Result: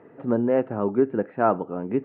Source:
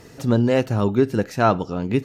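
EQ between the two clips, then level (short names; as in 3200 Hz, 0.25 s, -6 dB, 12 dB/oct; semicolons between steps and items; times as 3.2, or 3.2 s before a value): Gaussian blur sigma 4.5 samples; HPF 260 Hz 12 dB/oct; air absorption 320 m; 0.0 dB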